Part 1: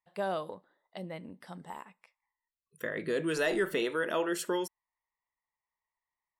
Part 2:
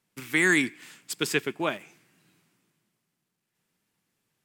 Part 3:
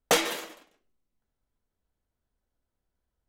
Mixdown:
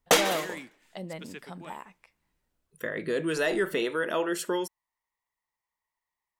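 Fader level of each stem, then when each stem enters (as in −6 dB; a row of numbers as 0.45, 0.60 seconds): +2.5, −18.5, +2.0 decibels; 0.00, 0.00, 0.00 seconds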